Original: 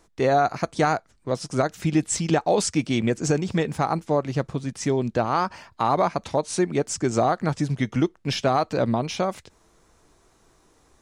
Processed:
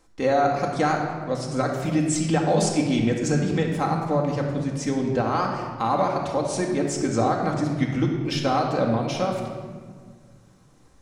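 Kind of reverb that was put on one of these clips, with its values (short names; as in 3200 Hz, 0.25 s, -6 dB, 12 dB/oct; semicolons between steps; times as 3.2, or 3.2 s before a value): shoebox room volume 2100 m³, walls mixed, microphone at 2.1 m; gain -3.5 dB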